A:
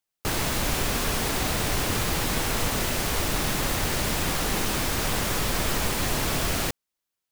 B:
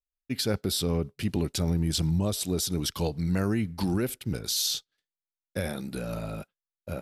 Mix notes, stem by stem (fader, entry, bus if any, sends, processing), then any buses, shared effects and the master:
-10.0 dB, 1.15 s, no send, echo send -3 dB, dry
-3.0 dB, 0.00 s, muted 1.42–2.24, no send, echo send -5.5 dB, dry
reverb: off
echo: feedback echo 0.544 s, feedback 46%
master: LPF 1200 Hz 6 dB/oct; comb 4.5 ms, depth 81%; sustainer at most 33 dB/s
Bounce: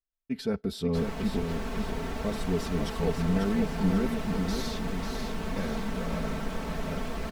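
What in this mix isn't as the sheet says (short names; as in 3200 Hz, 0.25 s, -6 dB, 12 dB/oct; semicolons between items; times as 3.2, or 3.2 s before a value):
stem A: entry 1.15 s -> 0.70 s; master: missing sustainer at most 33 dB/s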